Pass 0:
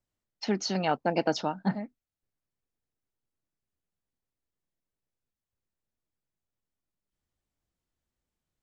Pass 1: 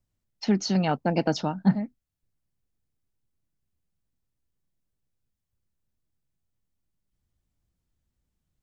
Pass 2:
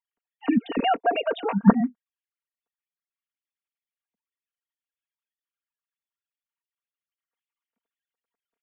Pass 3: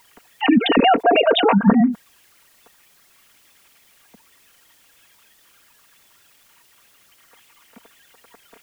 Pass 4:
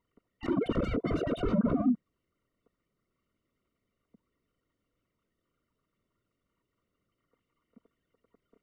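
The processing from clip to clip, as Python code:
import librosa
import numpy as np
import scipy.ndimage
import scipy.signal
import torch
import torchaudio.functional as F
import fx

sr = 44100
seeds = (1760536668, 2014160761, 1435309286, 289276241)

y1 = fx.bass_treble(x, sr, bass_db=11, treble_db=2)
y2 = fx.sine_speech(y1, sr)
y2 = y2 + 0.76 * np.pad(y2, (int(4.3 * sr / 1000.0), 0))[:len(y2)]
y3 = fx.env_flatten(y2, sr, amount_pct=70)
y4 = 10.0 ** (-17.0 / 20.0) * (np.abs((y3 / 10.0 ** (-17.0 / 20.0) + 3.0) % 4.0 - 2.0) - 1.0)
y4 = scipy.signal.lfilter(np.full(53, 1.0 / 53), 1.0, y4)
y4 = fx.noise_reduce_blind(y4, sr, reduce_db=9)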